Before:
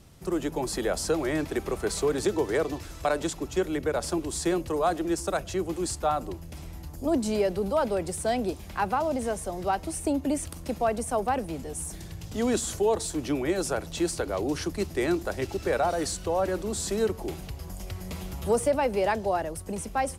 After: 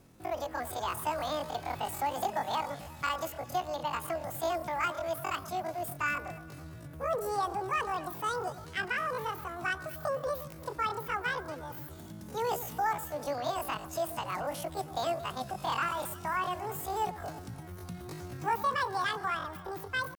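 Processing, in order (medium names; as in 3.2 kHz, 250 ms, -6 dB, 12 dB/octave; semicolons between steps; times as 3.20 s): median filter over 3 samples; echo whose repeats swap between lows and highs 113 ms, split 830 Hz, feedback 67%, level -13.5 dB; pitch shift +11.5 st; trim -6 dB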